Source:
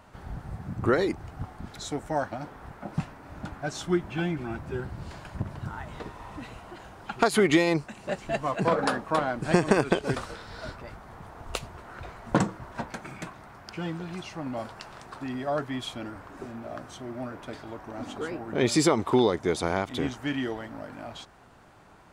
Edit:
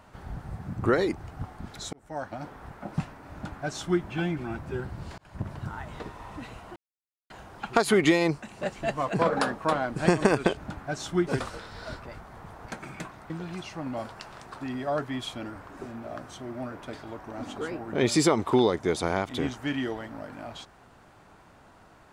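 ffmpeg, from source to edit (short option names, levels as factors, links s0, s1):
-filter_complex "[0:a]asplit=8[s0][s1][s2][s3][s4][s5][s6][s7];[s0]atrim=end=1.93,asetpts=PTS-STARTPTS,afade=t=out:st=1.926:d=0.004:c=hsin[s8];[s1]atrim=start=1.93:end=5.18,asetpts=PTS-STARTPTS,afade=t=in:d=0.54,afade=t=out:st=3.246:d=0.004:c=hsin[s9];[s2]atrim=start=5.18:end=6.76,asetpts=PTS-STARTPTS,afade=t=in:d=0.28,afade=t=out:st=1.576:d=0.004:c=hsin,apad=pad_dur=0.54[s10];[s3]atrim=start=6.76:end=10.032,asetpts=PTS-STARTPTS,afade=t=in:d=0.004:c=hsin[s11];[s4]atrim=start=3.318:end=4.022[s12];[s5]atrim=start=10.028:end=11.422[s13];[s6]atrim=start=12.878:end=13.522[s14];[s7]atrim=start=13.898[s15];[s8][s9][s10][s11]concat=n=4:v=0:a=1[s16];[s16][s12]acrossfade=d=0.004:c1=hsin:c2=hsin[s17];[s17][s13]acrossfade=d=0.004:c1=hsin:c2=hsin[s18];[s18][s14]acrossfade=d=0.004:c1=hsin:c2=hsin[s19];[s19][s15]acrossfade=d=0.004:c1=hsin:c2=hsin"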